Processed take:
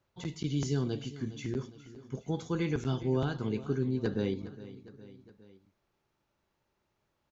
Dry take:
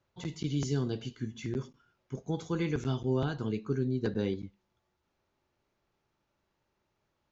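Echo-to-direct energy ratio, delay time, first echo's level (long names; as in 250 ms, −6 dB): −14.5 dB, 411 ms, −16.0 dB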